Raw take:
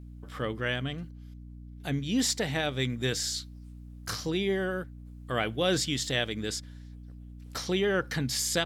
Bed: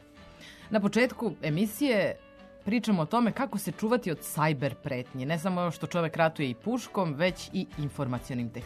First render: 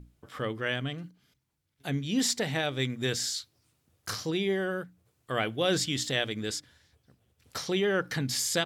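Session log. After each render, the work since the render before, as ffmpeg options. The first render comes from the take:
-af "bandreject=f=60:t=h:w=6,bandreject=f=120:t=h:w=6,bandreject=f=180:t=h:w=6,bandreject=f=240:t=h:w=6,bandreject=f=300:t=h:w=6"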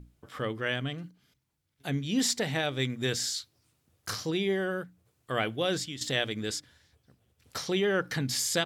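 -filter_complex "[0:a]asplit=2[a][b];[a]atrim=end=6.01,asetpts=PTS-STARTPTS,afade=t=out:st=5.52:d=0.49:silence=0.251189[c];[b]atrim=start=6.01,asetpts=PTS-STARTPTS,afade=t=in:d=0.004:c=hsin:silence=0.251189[d];[c][d]concat=n=2:v=0:a=1"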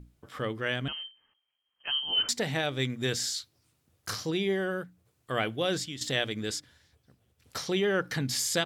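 -filter_complex "[0:a]asettb=1/sr,asplit=3[a][b][c];[a]atrim=end=0.884[d];[b]atrim=start=0.88:end=2.29,asetpts=PTS-STARTPTS,afade=t=in:d=0.004:c=qsin,afade=t=out:st=1.406:d=0.004:c=qsin,lowpass=f=2.8k:t=q:w=0.5098,lowpass=f=2.8k:t=q:w=0.6013,lowpass=f=2.8k:t=q:w=0.9,lowpass=f=2.8k:t=q:w=2.563,afreqshift=-3300[e];[c]atrim=start=2.286[f];[d][e]acrossfade=d=0.004:c1=hsin:c2=qsin[g];[g][f]acrossfade=d=0.004:c1=qsin:c2=hsin"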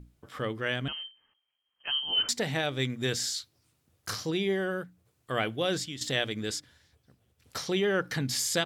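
-af anull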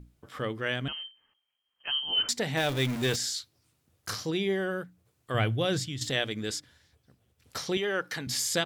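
-filter_complex "[0:a]asettb=1/sr,asplit=3[a][b][c];[a]atrim=end=2.574[d];[b]atrim=start=2.57:end=3.16,asetpts=PTS-STARTPTS,afade=t=in:d=0.004:c=qsin,afade=t=out:st=0.586:d=0.004:c=qsin,aeval=exprs='val(0)+0.5*0.0266*sgn(val(0))':c=same[e];[c]atrim=start=3.156[f];[d][e]acrossfade=d=0.004:c1=hsin:c2=qsin[g];[g][f]acrossfade=d=0.004:c1=qsin:c2=hsin,asettb=1/sr,asplit=3[h][i][j];[h]atrim=end=5.344[k];[i]atrim=start=5.34:end=6.1,asetpts=PTS-STARTPTS,afade=t=in:d=0.004:c=qsin,afade=t=out:st=0.756:d=0.004:c=qsin,equalizer=f=110:w=1.8:g=14[l];[j]atrim=start=6.096[m];[k][l]acrossfade=d=0.004:c1=hsin:c2=qsin[n];[n][m]acrossfade=d=0.004:c1=qsin:c2=hsin,asettb=1/sr,asplit=3[o][p][q];[o]atrim=end=7.774[r];[p]atrim=start=7.77:end=8.27,asetpts=PTS-STARTPTS,afade=t=in:d=0.004:c=qsin,afade=t=out:st=0.496:d=0.004:c=qsin,highpass=f=490:p=1[s];[q]atrim=start=8.266[t];[r][s]acrossfade=d=0.004:c1=hsin:c2=qsin[u];[u][t]acrossfade=d=0.004:c1=qsin:c2=hsin"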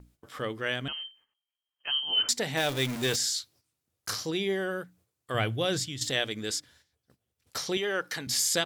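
-af "agate=range=-11dB:threshold=-60dB:ratio=16:detection=peak,bass=f=250:g=-4,treble=f=4k:g=4"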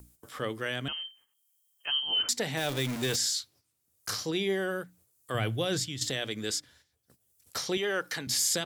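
-filter_complex "[0:a]acrossover=split=270|7000[a][b][c];[b]alimiter=limit=-21.5dB:level=0:latency=1:release=35[d];[c]acompressor=mode=upward:threshold=-50dB:ratio=2.5[e];[a][d][e]amix=inputs=3:normalize=0"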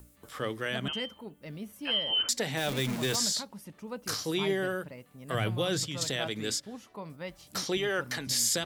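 -filter_complex "[1:a]volume=-13.5dB[a];[0:a][a]amix=inputs=2:normalize=0"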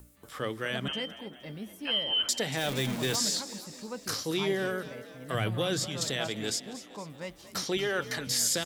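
-filter_complex "[0:a]asplit=6[a][b][c][d][e][f];[b]adelay=234,afreqshift=39,volume=-15dB[g];[c]adelay=468,afreqshift=78,volume=-20dB[h];[d]adelay=702,afreqshift=117,volume=-25.1dB[i];[e]adelay=936,afreqshift=156,volume=-30.1dB[j];[f]adelay=1170,afreqshift=195,volume=-35.1dB[k];[a][g][h][i][j][k]amix=inputs=6:normalize=0"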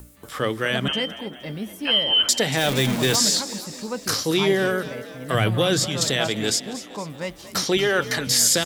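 -af "volume=9.5dB"

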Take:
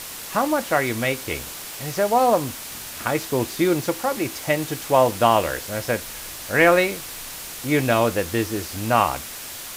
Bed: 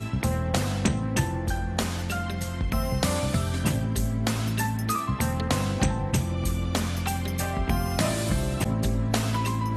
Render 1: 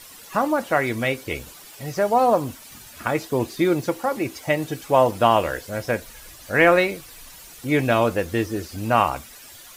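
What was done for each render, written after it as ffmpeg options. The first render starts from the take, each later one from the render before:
-af "afftdn=nr=12:nf=-35"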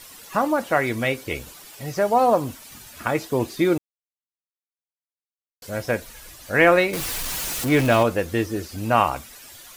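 -filter_complex "[0:a]asettb=1/sr,asplit=3[a][b][c];[a]atrim=end=6.934[d];[b]atrim=start=6.93:end=8.03,asetpts=PTS-STARTPTS,afade=t=in:d=0.004:c=qsin,afade=t=out:st=1.096:d=0.004:c=qsin,aeval=exprs='val(0)+0.5*0.0668*sgn(val(0))':c=same[e];[c]atrim=start=8.026[f];[d][e]acrossfade=d=0.004:c1=hsin:c2=qsin[g];[g][f]acrossfade=d=0.004:c1=qsin:c2=hsin,asplit=3[h][i][j];[h]atrim=end=3.78,asetpts=PTS-STARTPTS,afade=t=out:st=3.776:d=0.004:c=hsin[k];[i]atrim=start=3.78:end=5.62,asetpts=PTS-STARTPTS,volume=0[l];[j]atrim=start=5.62,asetpts=PTS-STARTPTS,afade=t=in:d=0.004:c=hsin[m];[k][l][m]concat=n=3:v=0:a=1"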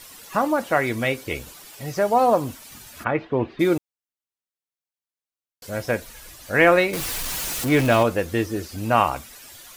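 -filter_complex "[0:a]asplit=3[a][b][c];[a]afade=t=out:st=3.03:d=0.02[d];[b]lowpass=f=2.8k:w=0.5412,lowpass=f=2.8k:w=1.3066,afade=t=in:st=3.03:d=0.02,afade=t=out:st=3.59:d=0.02[e];[c]afade=t=in:st=3.59:d=0.02[f];[d][e][f]amix=inputs=3:normalize=0"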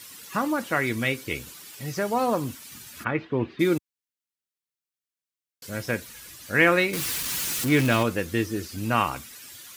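-af "highpass=90,equalizer=f=680:w=1.2:g=-9.5"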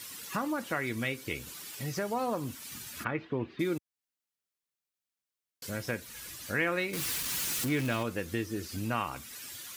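-af "acompressor=threshold=-35dB:ratio=2"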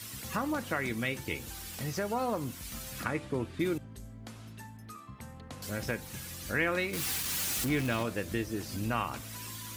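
-filter_complex "[1:a]volume=-20.5dB[a];[0:a][a]amix=inputs=2:normalize=0"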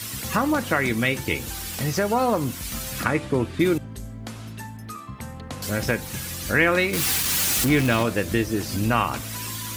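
-af "volume=10.5dB"

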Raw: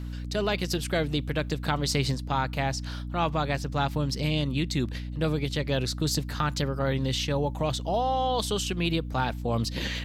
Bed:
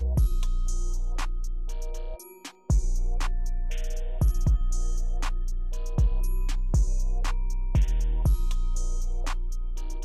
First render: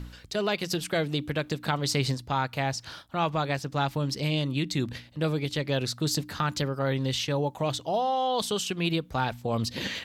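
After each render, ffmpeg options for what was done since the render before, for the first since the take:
-af "bandreject=f=60:t=h:w=4,bandreject=f=120:t=h:w=4,bandreject=f=180:t=h:w=4,bandreject=f=240:t=h:w=4,bandreject=f=300:t=h:w=4"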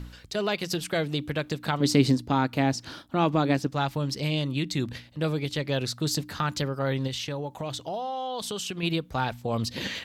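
-filter_complex "[0:a]asettb=1/sr,asplit=3[a][b][c];[a]atrim=end=1.804[d];[b]atrim=start=1.8:end=3.67,asetpts=PTS-STARTPTS,afade=t=in:d=0.004:c=qsin,afade=t=out:st=1.866:d=0.004:c=qsin,equalizer=f=280:w=1.3:g=13[e];[c]atrim=start=3.666[f];[d][e]acrossfade=d=0.004:c1=hsin:c2=qsin[g];[g][f]acrossfade=d=0.004:c1=qsin:c2=hsin,asettb=1/sr,asplit=3[h][i][j];[h]atrim=end=7.074[k];[i]atrim=start=7.07:end=8.83,asetpts=PTS-STARTPTS,afade=t=in:d=0.004:c=qsin,afade=t=out:st=1.756:d=0.004:c=qsin,acompressor=threshold=-29dB:ratio=4:attack=3.2:release=140:knee=1:detection=peak[l];[j]atrim=start=8.826[m];[k][l]acrossfade=d=0.004:c1=hsin:c2=qsin[n];[n][m]acrossfade=d=0.004:c1=qsin:c2=hsin"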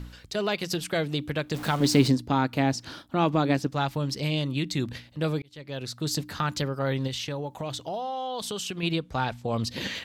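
-filter_complex "[0:a]asettb=1/sr,asplit=3[a][b][c];[a]atrim=end=1.544[d];[b]atrim=start=1.54:end=2.08,asetpts=PTS-STARTPTS,afade=t=in:d=0.004:c=qsin,afade=t=out:st=0.536:d=0.004:c=qsin,aeval=exprs='val(0)+0.5*0.0224*sgn(val(0))':c=same[e];[c]atrim=start=2.076[f];[d][e]acrossfade=d=0.004:c1=hsin:c2=qsin[g];[g][f]acrossfade=d=0.004:c1=qsin:c2=hsin,asettb=1/sr,asplit=3[h][i][j];[h]atrim=end=8.844[k];[i]atrim=start=8.84:end=9.67,asetpts=PTS-STARTPTS,afade=t=in:d=0.004:c=qsin,afade=t=out:st=0.826:d=0.004:c=qsin,lowpass=10k[l];[j]atrim=start=9.666[m];[k][l]acrossfade=d=0.004:c1=hsin:c2=qsin[n];[n][m]acrossfade=d=0.004:c1=qsin:c2=hsin,asplit=2[o][p];[o]atrim=end=5.42,asetpts=PTS-STARTPTS,afade=t=out:st=5.416:d=0.004:c=hsin[q];[p]atrim=start=5.42,asetpts=PTS-STARTPTS,afade=t=in:d=0.8[r];[q][r]concat=n=2:v=0:a=1"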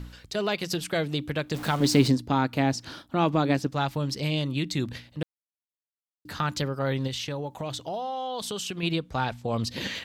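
-filter_complex "[0:a]asplit=3[a][b][c];[a]atrim=end=5.23,asetpts=PTS-STARTPTS,afade=t=out:st=5.226:d=0.004:c=hsin[d];[b]atrim=start=5.23:end=6.25,asetpts=PTS-STARTPTS,volume=0[e];[c]atrim=start=6.25,asetpts=PTS-STARTPTS,afade=t=in:d=0.004:c=hsin[f];[d][e][f]concat=n=3:v=0:a=1"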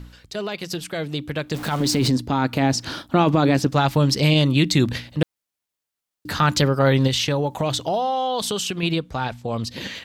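-af "alimiter=limit=-18dB:level=0:latency=1:release=23,dynaudnorm=f=600:g=7:m=11dB"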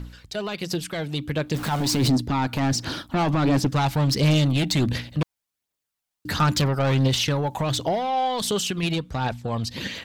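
-af "asoftclip=type=tanh:threshold=-17.5dB,aphaser=in_gain=1:out_gain=1:delay=1.4:decay=0.34:speed=1.4:type=triangular"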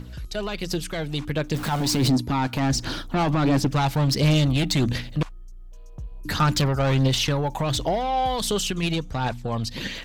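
-filter_complex "[1:a]volume=-13.5dB[a];[0:a][a]amix=inputs=2:normalize=0"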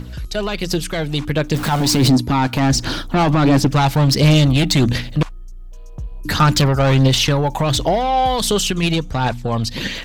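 -af "volume=7dB"

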